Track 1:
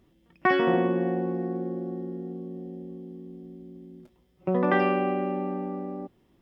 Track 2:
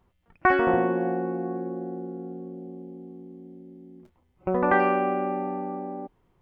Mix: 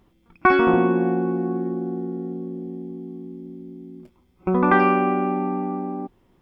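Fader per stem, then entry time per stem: +0.5, +3.0 dB; 0.00, 0.00 s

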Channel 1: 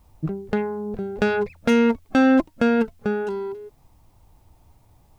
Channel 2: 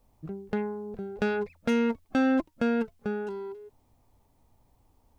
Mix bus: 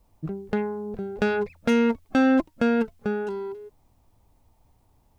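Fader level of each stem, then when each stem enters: -9.5, -1.0 dB; 0.00, 0.00 s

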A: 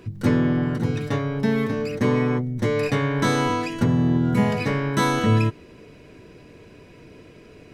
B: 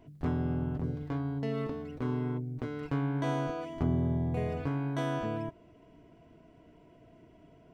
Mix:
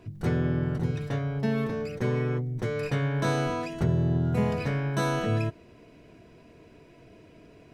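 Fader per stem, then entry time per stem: -8.5, +1.0 dB; 0.00, 0.00 s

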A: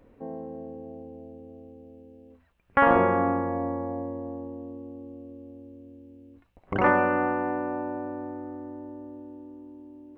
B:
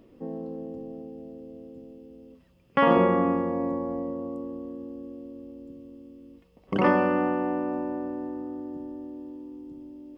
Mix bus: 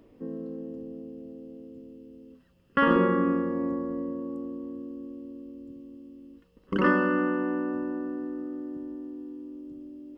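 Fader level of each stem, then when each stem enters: -7.0, -2.5 dB; 0.00, 0.00 s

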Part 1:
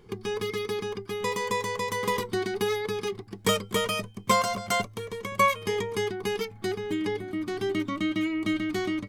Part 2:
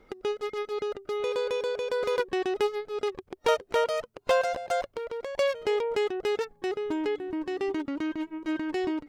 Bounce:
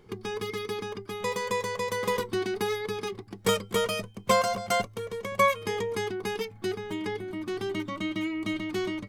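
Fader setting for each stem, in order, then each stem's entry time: -2.0, -7.5 dB; 0.00, 0.00 s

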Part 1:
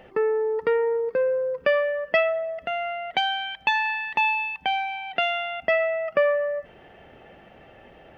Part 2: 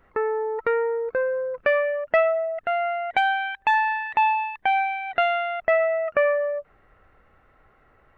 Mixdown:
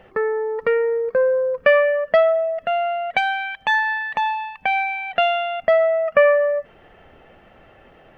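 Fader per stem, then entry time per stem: -1.0, +2.0 dB; 0.00, 0.00 s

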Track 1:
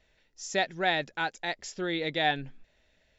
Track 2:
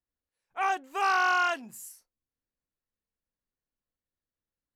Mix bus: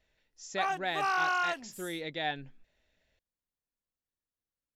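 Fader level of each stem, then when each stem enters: -7.0, -4.5 dB; 0.00, 0.00 s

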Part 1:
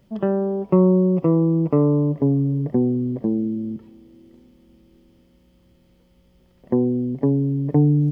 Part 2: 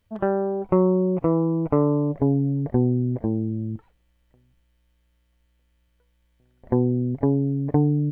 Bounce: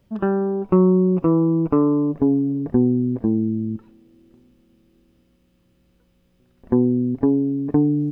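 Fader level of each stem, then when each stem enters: -4.5, +0.5 dB; 0.00, 0.00 s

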